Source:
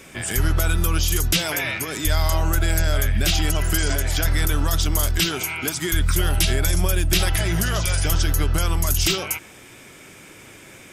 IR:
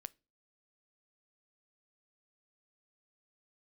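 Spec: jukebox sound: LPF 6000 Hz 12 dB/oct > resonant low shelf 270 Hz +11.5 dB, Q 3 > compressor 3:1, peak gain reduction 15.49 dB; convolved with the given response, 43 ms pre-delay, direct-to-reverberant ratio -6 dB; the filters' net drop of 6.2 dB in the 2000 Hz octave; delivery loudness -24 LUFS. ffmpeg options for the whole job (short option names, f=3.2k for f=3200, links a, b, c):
-filter_complex "[0:a]equalizer=f=2k:t=o:g=-8,asplit=2[a][b];[1:a]atrim=start_sample=2205,adelay=43[c];[b][c]afir=irnorm=-1:irlink=0,volume=11.5dB[d];[a][d]amix=inputs=2:normalize=0,lowpass=6k,lowshelf=f=270:t=q:w=3:g=11.5,acompressor=threshold=-17dB:ratio=3,volume=-6dB"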